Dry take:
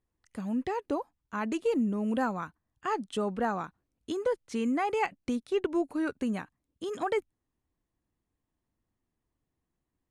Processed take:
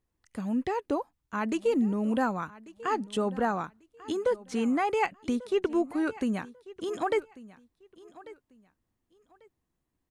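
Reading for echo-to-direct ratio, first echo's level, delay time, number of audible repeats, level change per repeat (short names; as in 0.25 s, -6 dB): -19.5 dB, -19.5 dB, 1.143 s, 2, -12.5 dB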